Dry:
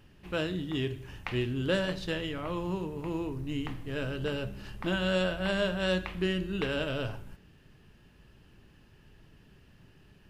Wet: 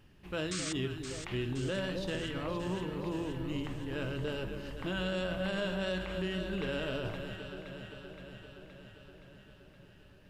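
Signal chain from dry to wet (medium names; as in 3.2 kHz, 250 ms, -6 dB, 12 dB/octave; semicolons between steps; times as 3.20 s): painted sound noise, 0.51–0.73 s, 1.1–8.9 kHz -33 dBFS; echo whose repeats swap between lows and highs 260 ms, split 960 Hz, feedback 80%, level -8 dB; peak limiter -23 dBFS, peak gain reduction 6.5 dB; trim -3 dB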